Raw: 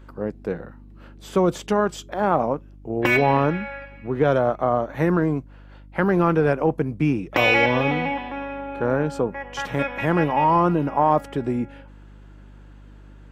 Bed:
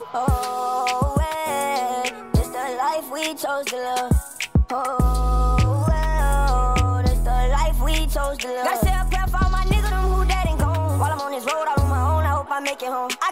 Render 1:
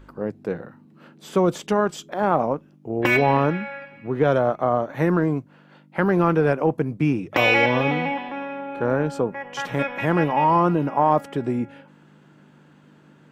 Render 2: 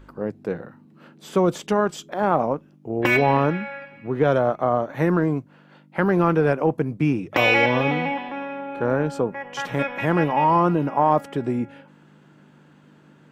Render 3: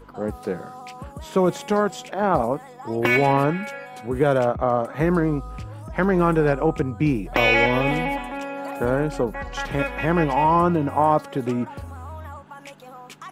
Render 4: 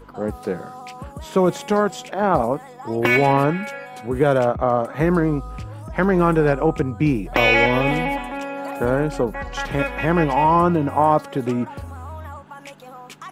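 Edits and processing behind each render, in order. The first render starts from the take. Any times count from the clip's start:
hum removal 50 Hz, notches 2
no processing that can be heard
mix in bed −17 dB
level +2 dB

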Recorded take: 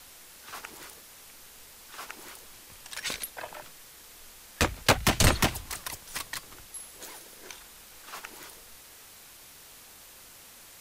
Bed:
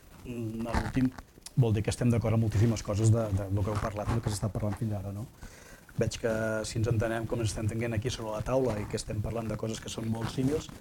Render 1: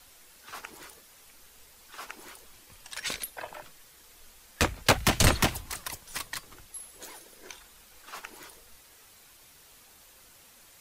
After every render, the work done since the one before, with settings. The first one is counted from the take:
broadband denoise 6 dB, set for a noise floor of −51 dBFS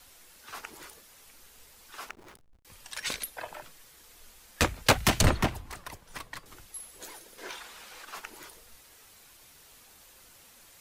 0:02.09–0:02.65: slack as between gear wheels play −38.5 dBFS
0:05.21–0:06.46: high-shelf EQ 2,700 Hz −12 dB
0:07.38–0:08.05: mid-hump overdrive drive 19 dB, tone 2,800 Hz, clips at −26.5 dBFS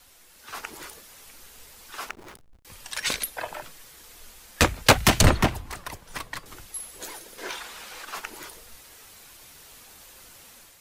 automatic gain control gain up to 6.5 dB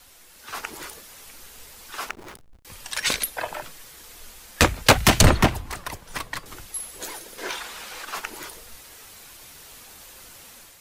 level +3.5 dB
brickwall limiter −3 dBFS, peak gain reduction 3 dB

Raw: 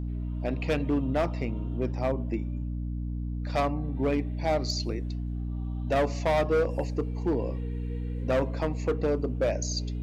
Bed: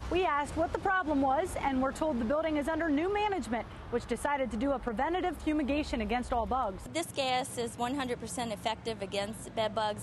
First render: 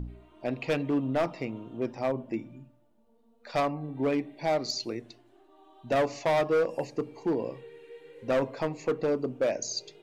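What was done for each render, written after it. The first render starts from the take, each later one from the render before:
hum removal 60 Hz, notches 5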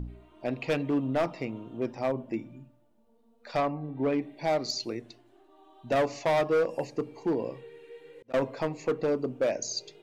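0:03.57–0:04.22: low-pass filter 2,600 Hz 6 dB per octave
0:07.30–0:08.34: volume swells 784 ms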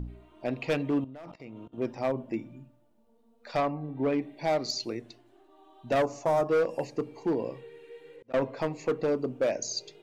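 0:01.04–0:01.78: output level in coarse steps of 22 dB
0:06.02–0:06.49: flat-topped bell 2,900 Hz −12.5 dB
0:08.16–0:08.59: low-pass filter 3,900 Hz 6 dB per octave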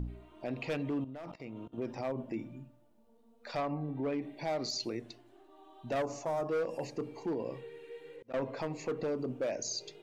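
brickwall limiter −28 dBFS, peak gain reduction 9 dB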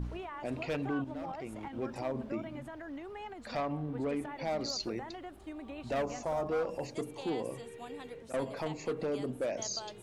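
mix in bed −14 dB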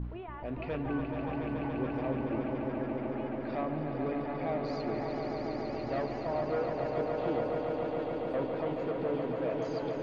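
high-frequency loss of the air 380 metres
on a send: echo that builds up and dies away 142 ms, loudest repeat 5, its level −6.5 dB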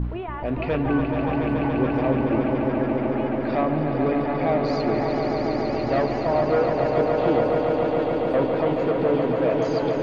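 level +11.5 dB

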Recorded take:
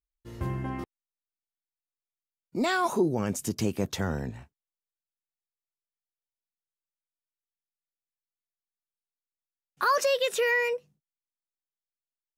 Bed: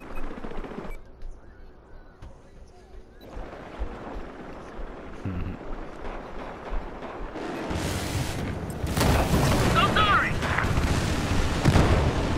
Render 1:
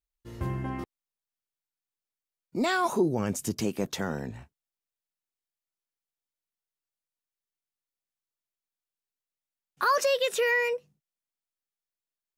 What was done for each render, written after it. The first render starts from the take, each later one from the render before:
0:03.60–0:04.30: parametric band 84 Hz −14 dB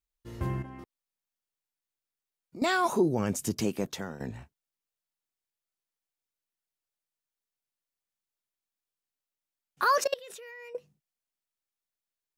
0:00.62–0:02.62: downward compressor 2.5 to 1, threshold −46 dBFS
0:03.71–0:04.20: fade out, to −12 dB
0:10.04–0:10.75: output level in coarse steps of 23 dB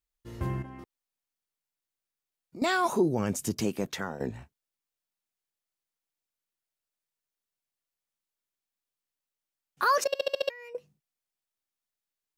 0:03.87–0:04.28: parametric band 2,800 Hz → 340 Hz +10 dB 0.86 octaves
0:10.08: stutter in place 0.07 s, 6 plays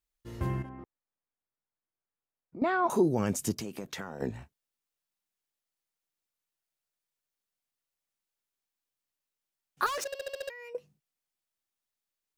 0:00.69–0:02.90: low-pass filter 1,500 Hz
0:03.52–0:04.22: downward compressor, threshold −34 dBFS
0:09.86–0:10.59: gain into a clipping stage and back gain 32.5 dB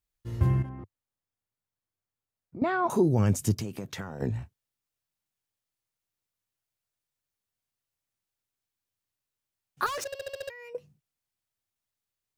parametric band 100 Hz +13 dB 1.2 octaves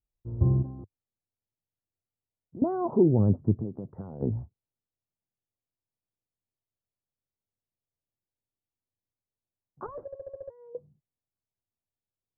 Bessel low-pass filter 590 Hz, order 8
dynamic equaliser 330 Hz, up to +4 dB, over −35 dBFS, Q 0.73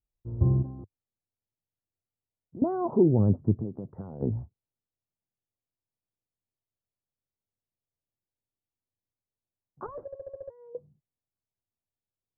no processing that can be heard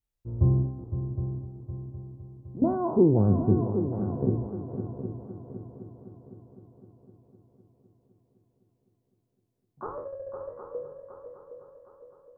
peak hold with a decay on every bin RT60 0.54 s
echo machine with several playback heads 255 ms, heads second and third, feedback 51%, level −10 dB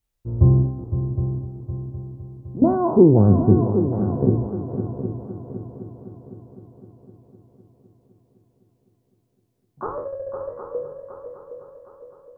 level +7.5 dB

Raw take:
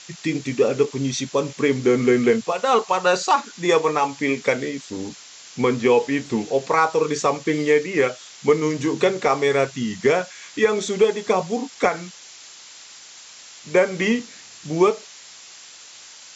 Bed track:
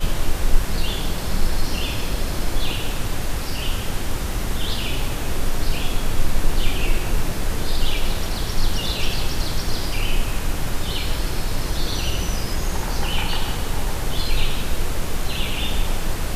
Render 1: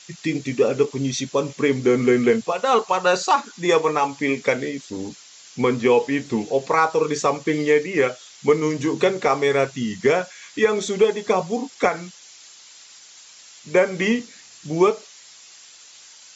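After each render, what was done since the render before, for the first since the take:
broadband denoise 6 dB, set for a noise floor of −44 dBFS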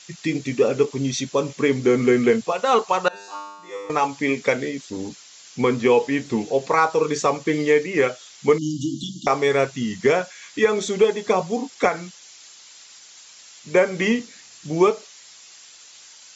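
0:03.08–0:03.90: tuned comb filter 100 Hz, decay 1.1 s, mix 100%
0:08.58–0:09.27: linear-phase brick-wall band-stop 330–2,800 Hz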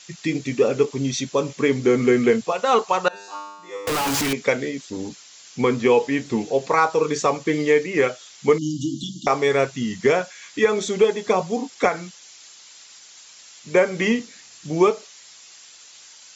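0:03.87–0:04.33: sign of each sample alone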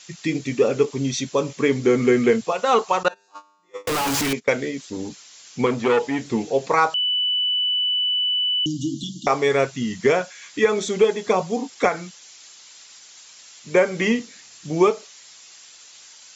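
0:03.03–0:04.63: noise gate −32 dBFS, range −20 dB
0:05.66–0:06.30: saturating transformer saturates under 860 Hz
0:06.94–0:08.66: beep over 2,980 Hz −18.5 dBFS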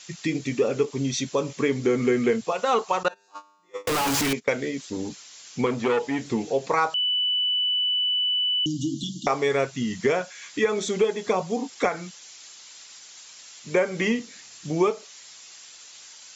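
downward compressor 1.5 to 1, threshold −26 dBFS, peak gain reduction 5.5 dB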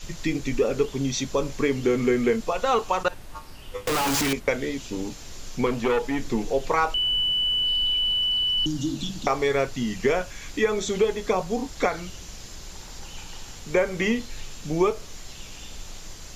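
mix in bed track −18.5 dB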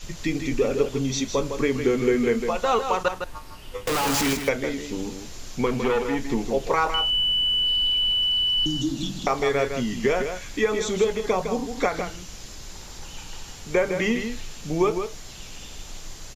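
single-tap delay 158 ms −7.5 dB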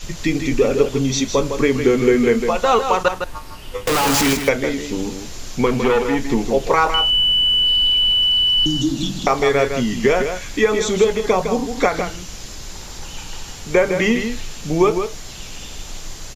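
level +6.5 dB

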